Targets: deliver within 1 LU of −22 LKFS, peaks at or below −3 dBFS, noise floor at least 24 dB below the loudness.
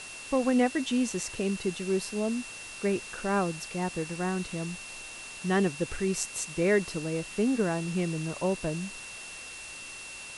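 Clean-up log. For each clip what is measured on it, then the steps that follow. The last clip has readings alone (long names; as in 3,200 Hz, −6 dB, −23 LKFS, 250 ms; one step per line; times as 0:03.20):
interfering tone 2,700 Hz; level of the tone −43 dBFS; background noise floor −43 dBFS; target noise floor −55 dBFS; integrated loudness −30.5 LKFS; sample peak −12.5 dBFS; target loudness −22.0 LKFS
→ notch filter 2,700 Hz, Q 30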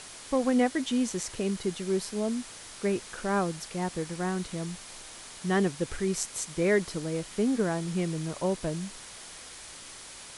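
interfering tone none found; background noise floor −46 dBFS; target noise floor −54 dBFS
→ broadband denoise 8 dB, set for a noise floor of −46 dBFS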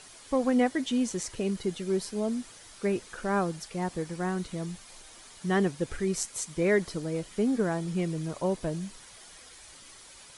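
background noise floor −51 dBFS; target noise floor −55 dBFS
→ broadband denoise 6 dB, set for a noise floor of −51 dBFS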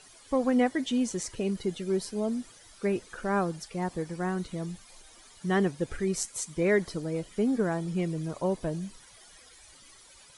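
background noise floor −54 dBFS; target noise floor −55 dBFS
→ broadband denoise 6 dB, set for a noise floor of −54 dBFS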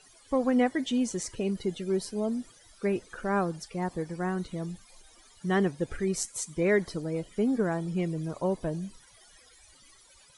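background noise floor −58 dBFS; integrated loudness −30.5 LKFS; sample peak −13.0 dBFS; target loudness −22.0 LKFS
→ level +8.5 dB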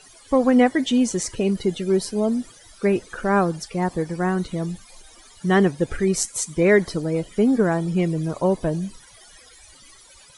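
integrated loudness −22.0 LKFS; sample peak −4.5 dBFS; background noise floor −49 dBFS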